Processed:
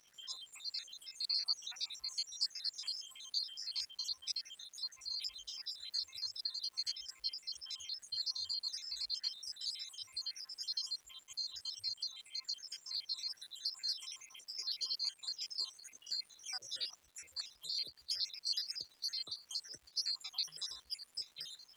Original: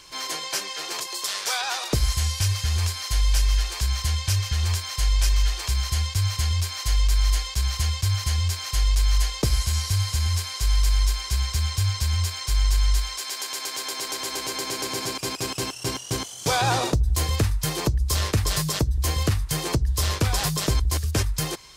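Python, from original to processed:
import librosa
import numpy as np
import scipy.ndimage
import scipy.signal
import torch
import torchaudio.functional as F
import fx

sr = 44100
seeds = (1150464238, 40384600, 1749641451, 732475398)

y = fx.spec_dropout(x, sr, seeds[0], share_pct=77)
y = fx.bandpass_q(y, sr, hz=4500.0, q=8.0)
y = fx.dmg_crackle(y, sr, seeds[1], per_s=520.0, level_db=-60.0)
y = F.gain(torch.from_numpy(y), 4.0).numpy()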